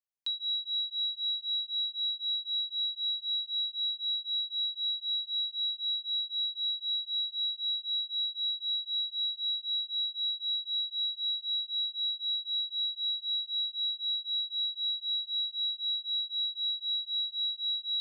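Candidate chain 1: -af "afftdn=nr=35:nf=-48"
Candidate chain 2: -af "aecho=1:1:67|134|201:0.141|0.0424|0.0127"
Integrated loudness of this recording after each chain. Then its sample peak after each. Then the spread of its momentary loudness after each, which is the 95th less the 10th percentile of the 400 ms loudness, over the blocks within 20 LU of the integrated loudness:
-30.0, -29.0 LUFS; -27.0, -26.0 dBFS; 2, 2 LU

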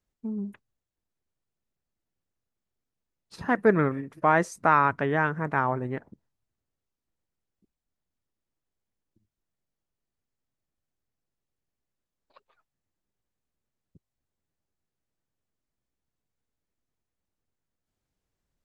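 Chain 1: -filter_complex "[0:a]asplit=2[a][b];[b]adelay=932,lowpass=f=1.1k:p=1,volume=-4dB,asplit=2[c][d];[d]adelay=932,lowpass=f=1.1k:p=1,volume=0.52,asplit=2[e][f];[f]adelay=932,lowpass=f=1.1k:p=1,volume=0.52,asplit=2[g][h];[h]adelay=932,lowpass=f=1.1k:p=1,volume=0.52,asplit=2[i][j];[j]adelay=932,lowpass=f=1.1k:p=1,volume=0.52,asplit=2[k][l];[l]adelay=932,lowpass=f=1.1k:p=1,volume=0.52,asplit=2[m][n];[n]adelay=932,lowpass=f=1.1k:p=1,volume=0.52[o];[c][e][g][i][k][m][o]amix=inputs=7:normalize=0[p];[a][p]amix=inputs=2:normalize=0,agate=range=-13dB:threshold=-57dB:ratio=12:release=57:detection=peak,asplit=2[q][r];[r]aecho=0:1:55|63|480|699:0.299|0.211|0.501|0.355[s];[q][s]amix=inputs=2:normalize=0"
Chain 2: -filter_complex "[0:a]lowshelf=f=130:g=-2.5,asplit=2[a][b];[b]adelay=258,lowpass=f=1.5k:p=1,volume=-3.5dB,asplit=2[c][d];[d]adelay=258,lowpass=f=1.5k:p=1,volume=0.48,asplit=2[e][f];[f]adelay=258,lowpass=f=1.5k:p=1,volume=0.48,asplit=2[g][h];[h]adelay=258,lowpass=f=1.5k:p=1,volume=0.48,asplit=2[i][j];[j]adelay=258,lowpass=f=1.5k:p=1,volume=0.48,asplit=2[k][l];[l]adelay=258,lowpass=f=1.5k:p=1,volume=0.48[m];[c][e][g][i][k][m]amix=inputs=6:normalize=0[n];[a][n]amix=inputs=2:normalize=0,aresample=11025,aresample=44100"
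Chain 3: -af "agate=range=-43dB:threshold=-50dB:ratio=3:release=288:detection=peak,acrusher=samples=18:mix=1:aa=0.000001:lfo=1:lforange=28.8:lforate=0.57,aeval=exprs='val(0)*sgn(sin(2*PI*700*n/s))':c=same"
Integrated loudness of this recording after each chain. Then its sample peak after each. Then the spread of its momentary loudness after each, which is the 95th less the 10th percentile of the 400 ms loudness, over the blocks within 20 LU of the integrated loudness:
-24.5, -24.5, -24.5 LUFS; -5.5, -6.0, -7.0 dBFS; 22, 18, 13 LU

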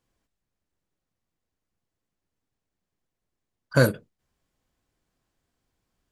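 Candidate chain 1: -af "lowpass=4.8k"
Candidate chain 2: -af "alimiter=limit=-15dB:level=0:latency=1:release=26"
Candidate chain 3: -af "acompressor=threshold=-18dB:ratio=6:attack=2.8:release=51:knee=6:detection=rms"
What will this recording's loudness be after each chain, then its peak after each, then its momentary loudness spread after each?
-23.5, -30.0, -29.0 LUFS; -5.0, -15.0, -11.0 dBFS; 12, 10, 10 LU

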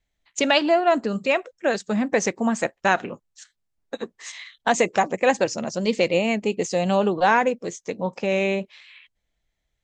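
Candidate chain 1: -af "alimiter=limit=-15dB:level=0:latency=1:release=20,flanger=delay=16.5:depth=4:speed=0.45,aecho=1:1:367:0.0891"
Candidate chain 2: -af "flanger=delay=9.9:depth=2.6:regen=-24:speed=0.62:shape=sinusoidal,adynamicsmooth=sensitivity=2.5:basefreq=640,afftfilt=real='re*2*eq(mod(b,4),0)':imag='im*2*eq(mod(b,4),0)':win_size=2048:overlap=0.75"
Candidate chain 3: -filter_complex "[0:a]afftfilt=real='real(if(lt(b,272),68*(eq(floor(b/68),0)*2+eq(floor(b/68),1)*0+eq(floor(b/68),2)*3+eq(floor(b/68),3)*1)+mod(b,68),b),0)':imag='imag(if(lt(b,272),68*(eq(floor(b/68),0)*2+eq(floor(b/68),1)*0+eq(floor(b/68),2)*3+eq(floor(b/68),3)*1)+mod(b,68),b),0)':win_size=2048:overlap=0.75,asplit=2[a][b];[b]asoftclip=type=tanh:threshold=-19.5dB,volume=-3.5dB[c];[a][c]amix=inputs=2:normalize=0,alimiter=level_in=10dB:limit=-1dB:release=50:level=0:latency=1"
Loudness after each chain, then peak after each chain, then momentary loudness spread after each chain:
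-28.5, -28.5, -9.5 LUFS; -15.0, -9.5, -1.0 dBFS; 13, 13, 12 LU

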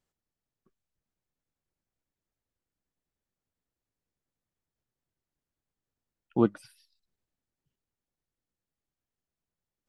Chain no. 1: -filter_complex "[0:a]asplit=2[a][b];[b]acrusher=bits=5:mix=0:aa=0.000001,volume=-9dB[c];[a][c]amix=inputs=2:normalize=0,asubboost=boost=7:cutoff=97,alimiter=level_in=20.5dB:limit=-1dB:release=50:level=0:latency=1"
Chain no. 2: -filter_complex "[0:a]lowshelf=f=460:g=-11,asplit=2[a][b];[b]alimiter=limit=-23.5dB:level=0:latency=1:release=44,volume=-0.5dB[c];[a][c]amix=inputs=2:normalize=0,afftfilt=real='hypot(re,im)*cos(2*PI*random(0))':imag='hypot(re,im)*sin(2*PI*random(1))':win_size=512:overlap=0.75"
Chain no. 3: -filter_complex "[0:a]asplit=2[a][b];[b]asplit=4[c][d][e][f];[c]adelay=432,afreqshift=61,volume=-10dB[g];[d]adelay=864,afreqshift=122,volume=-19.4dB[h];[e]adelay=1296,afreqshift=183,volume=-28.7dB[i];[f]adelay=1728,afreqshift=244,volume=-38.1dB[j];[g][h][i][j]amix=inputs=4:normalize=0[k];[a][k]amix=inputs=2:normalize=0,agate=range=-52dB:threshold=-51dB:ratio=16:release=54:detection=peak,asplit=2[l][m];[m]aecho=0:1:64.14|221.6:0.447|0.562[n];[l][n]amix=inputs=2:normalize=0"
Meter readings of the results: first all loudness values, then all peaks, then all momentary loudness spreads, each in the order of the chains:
-17.5, -38.0, -30.0 LUFS; -1.0, -20.5, -10.0 dBFS; 19, 11, 19 LU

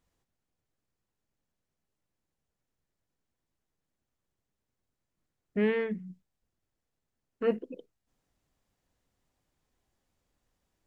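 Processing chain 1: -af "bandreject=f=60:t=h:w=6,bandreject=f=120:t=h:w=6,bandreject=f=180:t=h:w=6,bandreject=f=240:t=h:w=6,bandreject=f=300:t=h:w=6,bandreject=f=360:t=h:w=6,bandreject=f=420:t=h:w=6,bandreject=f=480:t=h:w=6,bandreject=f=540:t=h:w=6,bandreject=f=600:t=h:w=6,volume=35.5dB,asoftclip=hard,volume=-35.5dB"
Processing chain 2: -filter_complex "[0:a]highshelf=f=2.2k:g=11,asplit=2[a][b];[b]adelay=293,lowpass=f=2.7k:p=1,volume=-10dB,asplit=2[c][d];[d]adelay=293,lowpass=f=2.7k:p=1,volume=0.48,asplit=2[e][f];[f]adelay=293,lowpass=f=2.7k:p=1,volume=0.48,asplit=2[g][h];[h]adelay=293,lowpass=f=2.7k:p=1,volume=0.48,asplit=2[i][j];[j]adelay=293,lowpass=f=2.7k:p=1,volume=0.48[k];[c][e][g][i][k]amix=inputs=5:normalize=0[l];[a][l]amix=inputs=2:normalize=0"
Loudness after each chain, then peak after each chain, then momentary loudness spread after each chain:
-41.5, -31.5 LUFS; -35.5, -14.5 dBFS; 13, 20 LU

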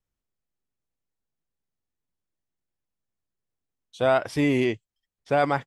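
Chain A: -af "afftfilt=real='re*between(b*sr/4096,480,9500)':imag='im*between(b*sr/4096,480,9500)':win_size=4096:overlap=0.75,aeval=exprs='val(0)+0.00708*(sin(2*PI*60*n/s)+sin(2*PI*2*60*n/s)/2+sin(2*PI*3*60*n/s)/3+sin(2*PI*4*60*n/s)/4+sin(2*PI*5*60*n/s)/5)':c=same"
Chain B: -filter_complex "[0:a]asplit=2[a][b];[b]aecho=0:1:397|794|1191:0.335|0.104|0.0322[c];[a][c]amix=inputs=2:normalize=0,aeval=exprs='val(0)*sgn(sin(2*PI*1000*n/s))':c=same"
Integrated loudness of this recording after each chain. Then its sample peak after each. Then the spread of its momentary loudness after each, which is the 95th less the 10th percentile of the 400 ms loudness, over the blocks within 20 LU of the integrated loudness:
-26.5, -23.0 LUFS; -10.0, -9.0 dBFS; 16, 9 LU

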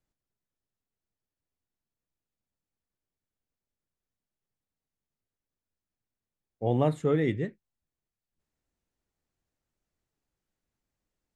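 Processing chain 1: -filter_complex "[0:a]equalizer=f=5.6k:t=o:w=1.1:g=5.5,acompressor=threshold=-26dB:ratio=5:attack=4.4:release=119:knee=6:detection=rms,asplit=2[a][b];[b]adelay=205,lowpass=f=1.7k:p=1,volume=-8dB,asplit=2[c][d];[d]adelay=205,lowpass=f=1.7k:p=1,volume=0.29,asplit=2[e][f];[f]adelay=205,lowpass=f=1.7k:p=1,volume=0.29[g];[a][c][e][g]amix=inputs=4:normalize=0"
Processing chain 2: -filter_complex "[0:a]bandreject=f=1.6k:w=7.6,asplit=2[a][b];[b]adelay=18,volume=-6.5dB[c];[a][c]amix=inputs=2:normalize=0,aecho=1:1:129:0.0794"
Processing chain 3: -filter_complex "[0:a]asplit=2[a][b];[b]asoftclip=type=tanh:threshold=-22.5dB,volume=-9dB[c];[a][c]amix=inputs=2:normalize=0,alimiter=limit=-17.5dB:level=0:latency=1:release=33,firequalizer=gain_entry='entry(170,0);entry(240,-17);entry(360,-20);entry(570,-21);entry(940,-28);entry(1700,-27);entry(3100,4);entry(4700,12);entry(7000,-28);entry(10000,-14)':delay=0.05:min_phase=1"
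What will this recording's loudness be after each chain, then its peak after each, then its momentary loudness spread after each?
-33.5, -27.5, -34.0 LUFS; -19.0, -11.5, -22.5 dBFS; 11, 8, 7 LU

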